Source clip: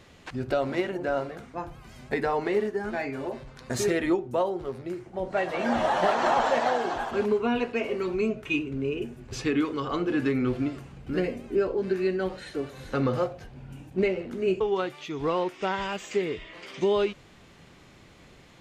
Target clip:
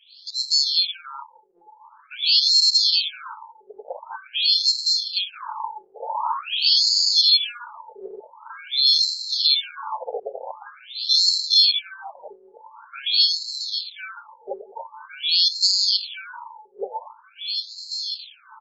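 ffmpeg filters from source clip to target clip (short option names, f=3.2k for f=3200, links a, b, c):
-filter_complex "[0:a]equalizer=f=580:w=0.6:g=9.5,aecho=1:1:541|1082|1623|2164:0.1|0.056|0.0314|0.0176,acrusher=samples=23:mix=1:aa=0.000001,asplit=3[a][b][c];[a]afade=t=out:st=5.29:d=0.02[d];[b]aeval=exprs='(mod(11.2*val(0)+1,2)-1)/11.2':c=same,afade=t=in:st=5.29:d=0.02,afade=t=out:st=5.94:d=0.02[e];[c]afade=t=in:st=5.94:d=0.02[f];[d][e][f]amix=inputs=3:normalize=0,dynaudnorm=f=330:g=9:m=16.5dB,afftfilt=real='re*(1-between(b*sr/4096,380,840))':imag='im*(1-between(b*sr/4096,380,840))':win_size=4096:overlap=0.75,asoftclip=type=hard:threshold=-10dB,firequalizer=gain_entry='entry(120,0);entry(260,-5);entry(410,2);entry(1200,-25);entry(2000,-29);entry(4000,7);entry(5900,-12);entry(11000,5)':delay=0.05:min_phase=1,alimiter=level_in=12dB:limit=-1dB:release=50:level=0:latency=1,afftfilt=real='re*between(b*sr/1024,570*pow(5600/570,0.5+0.5*sin(2*PI*0.46*pts/sr))/1.41,570*pow(5600/570,0.5+0.5*sin(2*PI*0.46*pts/sr))*1.41)':imag='im*between(b*sr/1024,570*pow(5600/570,0.5+0.5*sin(2*PI*0.46*pts/sr))/1.41,570*pow(5600/570,0.5+0.5*sin(2*PI*0.46*pts/sr))*1.41)':win_size=1024:overlap=0.75,volume=5.5dB"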